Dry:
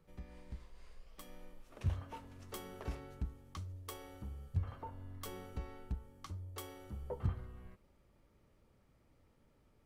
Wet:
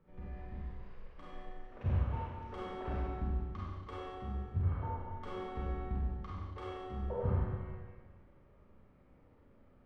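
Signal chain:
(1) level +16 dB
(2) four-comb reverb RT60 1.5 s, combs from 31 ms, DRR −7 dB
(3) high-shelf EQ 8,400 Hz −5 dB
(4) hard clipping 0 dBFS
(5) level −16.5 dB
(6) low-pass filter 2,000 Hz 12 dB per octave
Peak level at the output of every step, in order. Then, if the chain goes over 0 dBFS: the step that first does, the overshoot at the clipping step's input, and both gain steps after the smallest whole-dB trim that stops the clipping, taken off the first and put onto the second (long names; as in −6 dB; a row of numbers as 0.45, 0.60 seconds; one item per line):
−6.5, −5.5, −5.5, −5.5, −22.0, −22.0 dBFS
no step passes full scale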